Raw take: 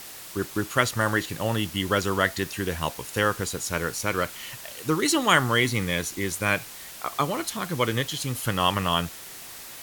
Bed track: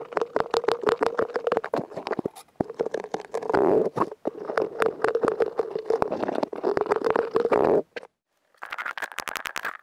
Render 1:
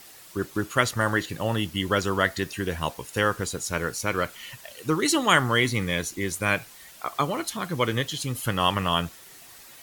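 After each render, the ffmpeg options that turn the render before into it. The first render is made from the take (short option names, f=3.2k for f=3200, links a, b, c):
-af "afftdn=nr=8:nf=-42"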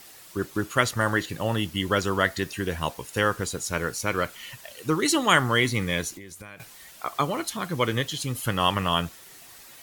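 -filter_complex "[0:a]asettb=1/sr,asplit=3[a][b][c];[a]atrim=end=6.154[d];[b]atrim=start=6.15:end=6.6,asetpts=PTS-STARTPTS,afade=t=in:d=0.004:c=qsin,afade=t=out:st=0.446:d=0.004:c=qsin,acompressor=threshold=-38dB:ratio=12:attack=3.2:release=140:knee=1:detection=peak[e];[c]atrim=start=6.596[f];[d][e]acrossfade=d=0.004:c1=hsin:c2=qsin[g];[g][f]acrossfade=d=0.004:c1=qsin:c2=hsin"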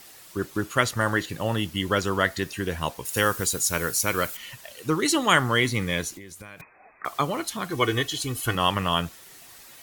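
-filter_complex "[0:a]asettb=1/sr,asplit=3[a][b][c];[a]atrim=end=3.054[d];[b]atrim=start=3.05:end=4.37,asetpts=PTS-STARTPTS,afade=t=in:d=0.004:c=qsin,afade=t=out:st=1.316:d=0.004:c=qsin,aemphasis=mode=production:type=50kf[e];[c]atrim=start=4.366[f];[d][e]acrossfade=d=0.004:c1=hsin:c2=qsin[g];[g][f]acrossfade=d=0.004:c1=qsin:c2=hsin,asettb=1/sr,asplit=3[h][i][j];[h]atrim=end=6.614[k];[i]atrim=start=6.61:end=7.05,asetpts=PTS-STARTPTS,afade=t=in:d=0.004:c=qsin,afade=t=out:st=0.436:d=0.004:c=qsin,lowpass=f=2.2k:t=q:w=0.5098,lowpass=f=2.2k:t=q:w=0.6013,lowpass=f=2.2k:t=q:w=0.9,lowpass=f=2.2k:t=q:w=2.563,afreqshift=-2600[l];[j]atrim=start=7.046[m];[k][l]acrossfade=d=0.004:c1=hsin:c2=qsin[n];[n][m]acrossfade=d=0.004:c1=qsin:c2=hsin,asettb=1/sr,asplit=3[o][p][q];[o]atrim=end=7.704[r];[p]atrim=start=7.7:end=8.55,asetpts=PTS-STARTPTS,afade=t=in:d=0.004:c=qsin,afade=t=out:st=0.846:d=0.004:c=qsin,aecho=1:1:2.7:0.77,atrim=end_sample=37485[s];[q]atrim=start=8.546[t];[r][s]acrossfade=d=0.004:c1=hsin:c2=qsin[u];[u][t]acrossfade=d=0.004:c1=qsin:c2=hsin"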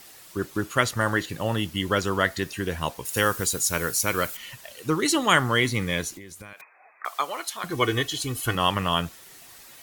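-filter_complex "[0:a]asettb=1/sr,asplit=3[a][b][c];[a]atrim=end=6.534[d];[b]atrim=start=6.53:end=7.64,asetpts=PTS-STARTPTS,afade=t=in:d=0.004:c=qsin,afade=t=out:st=1.106:d=0.004:c=qsin,highpass=660[e];[c]atrim=start=7.636[f];[d][e]acrossfade=d=0.004:c1=hsin:c2=qsin[g];[g][f]acrossfade=d=0.004:c1=qsin:c2=hsin"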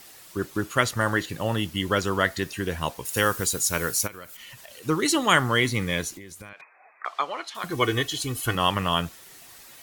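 -filter_complex "[0:a]asplit=3[a][b][c];[a]afade=t=out:st=4.06:d=0.02[d];[b]acompressor=threshold=-40dB:ratio=4:attack=3.2:release=140:knee=1:detection=peak,afade=t=in:st=4.06:d=0.02,afade=t=out:st=4.82:d=0.02[e];[c]afade=t=in:st=4.82:d=0.02[f];[d][e][f]amix=inputs=3:normalize=0,asettb=1/sr,asplit=3[g][h][i];[g]atrim=end=6.494[j];[h]atrim=start=6.49:end=7.55,asetpts=PTS-STARTPTS,afade=t=in:d=0.004:c=qsin,afade=t=out:st=1.056:d=0.004:c=qsin,lowpass=4.2k[k];[i]atrim=start=7.546[l];[j][k]acrossfade=d=0.004:c1=hsin:c2=qsin[m];[m][l]acrossfade=d=0.004:c1=qsin:c2=hsin"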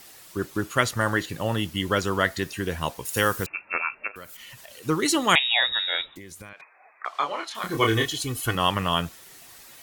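-filter_complex "[0:a]asettb=1/sr,asplit=3[a][b][c];[a]atrim=end=3.464[d];[b]atrim=start=3.46:end=4.16,asetpts=PTS-STARTPTS,afade=t=in:d=0.004:c=qsin,afade=t=out:st=0.696:d=0.004:c=qsin,lowpass=f=2.4k:t=q:w=0.5098,lowpass=f=2.4k:t=q:w=0.6013,lowpass=f=2.4k:t=q:w=0.9,lowpass=f=2.4k:t=q:w=2.563,afreqshift=-2800[e];[c]atrim=start=4.156[f];[d][e]acrossfade=d=0.004:c1=hsin:c2=qsin[g];[g][f]acrossfade=d=0.004:c1=qsin:c2=hsin,asettb=1/sr,asplit=3[h][i][j];[h]atrim=end=5.354[k];[i]atrim=start=5.35:end=6.16,asetpts=PTS-STARTPTS,afade=t=in:d=0.004:c=qsin,afade=t=out:st=0.806:d=0.004:c=qsin,lowpass=f=3.3k:t=q:w=0.5098,lowpass=f=3.3k:t=q:w=0.6013,lowpass=f=3.3k:t=q:w=0.9,lowpass=f=3.3k:t=q:w=2.563,afreqshift=-3900[l];[j]atrim=start=6.156[m];[k][l]acrossfade=d=0.004:c1=hsin:c2=qsin[n];[n][m]acrossfade=d=0.004:c1=qsin:c2=hsin,asettb=1/sr,asplit=3[o][p][q];[o]atrim=end=7.114[r];[p]atrim=start=7.11:end=8.12,asetpts=PTS-STARTPTS,afade=t=in:d=0.004:c=qsin,afade=t=out:st=1.006:d=0.004:c=qsin,asplit=2[s][t];[t]adelay=27,volume=-3dB[u];[s][u]amix=inputs=2:normalize=0,atrim=end_sample=44541[v];[q]atrim=start=8.116[w];[r][v]acrossfade=d=0.004:c1=hsin:c2=qsin[x];[x][w]acrossfade=d=0.004:c1=qsin:c2=hsin"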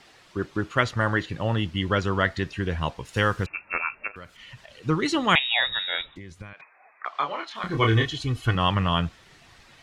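-af "lowpass=3.8k,asubboost=boost=2:cutoff=210"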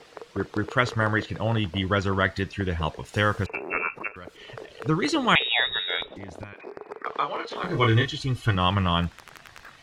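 -filter_complex "[1:a]volume=-16dB[a];[0:a][a]amix=inputs=2:normalize=0"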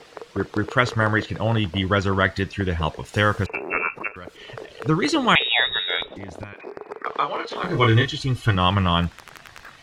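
-af "volume=3.5dB,alimiter=limit=-3dB:level=0:latency=1"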